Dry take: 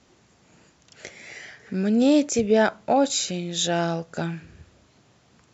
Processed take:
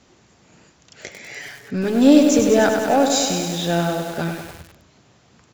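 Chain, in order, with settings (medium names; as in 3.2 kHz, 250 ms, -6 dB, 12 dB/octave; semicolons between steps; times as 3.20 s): 3.45–4.19 s: distance through air 250 m; in parallel at -7 dB: hard clipper -23.5 dBFS, distortion -6 dB; 1.32–2.25 s: on the sum: comb 7.1 ms, depth 75%; feedback delay 139 ms, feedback 47%, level -19 dB; bit-crushed delay 99 ms, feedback 80%, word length 6-bit, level -6 dB; trim +1 dB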